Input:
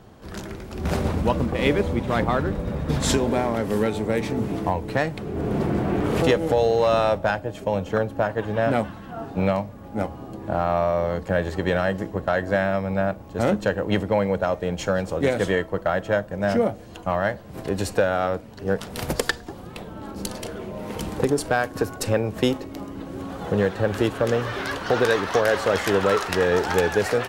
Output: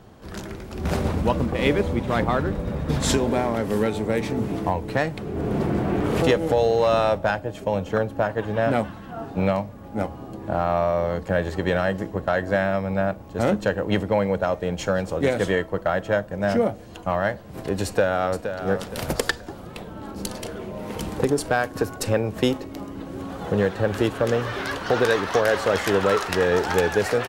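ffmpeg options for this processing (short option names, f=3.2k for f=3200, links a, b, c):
-filter_complex "[0:a]asplit=2[a][b];[b]afade=t=in:st=17.85:d=0.01,afade=t=out:st=18.61:d=0.01,aecho=0:1:470|940|1410|1880:0.354813|0.124185|0.0434646|0.0152126[c];[a][c]amix=inputs=2:normalize=0"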